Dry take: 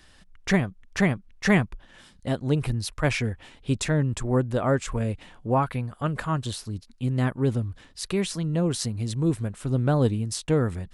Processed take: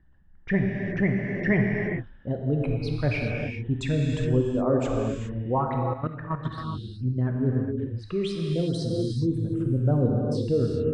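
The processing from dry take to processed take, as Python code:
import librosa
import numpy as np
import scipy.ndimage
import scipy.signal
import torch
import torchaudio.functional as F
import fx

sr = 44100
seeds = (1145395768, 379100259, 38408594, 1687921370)

y = fx.envelope_sharpen(x, sr, power=2.0)
y = fx.env_lowpass(y, sr, base_hz=1100.0, full_db=-18.5)
y = fx.dynamic_eq(y, sr, hz=6800.0, q=1.6, threshold_db=-55.0, ratio=4.0, max_db=-6)
y = fx.rev_gated(y, sr, seeds[0], gate_ms=440, shape='flat', drr_db=-0.5)
y = fx.level_steps(y, sr, step_db=11, at=(5.78, 6.58))
y = F.gain(torch.from_numpy(y), -3.5).numpy()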